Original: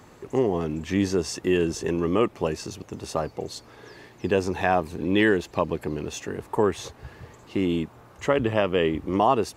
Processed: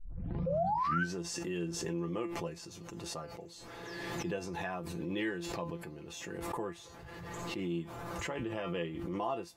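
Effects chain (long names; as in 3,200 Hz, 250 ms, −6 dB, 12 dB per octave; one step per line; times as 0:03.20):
turntable start at the beginning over 1.14 s
sound drawn into the spectrogram rise, 0:00.46–0:01.04, 510–1,600 Hz −18 dBFS
tuned comb filter 170 Hz, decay 0.16 s, harmonics all, mix 90%
background raised ahead of every attack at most 23 dB per second
level −7.5 dB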